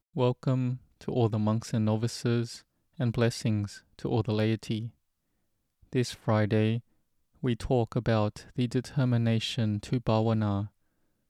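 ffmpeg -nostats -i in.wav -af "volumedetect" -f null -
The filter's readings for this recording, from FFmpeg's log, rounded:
mean_volume: -29.2 dB
max_volume: -13.4 dB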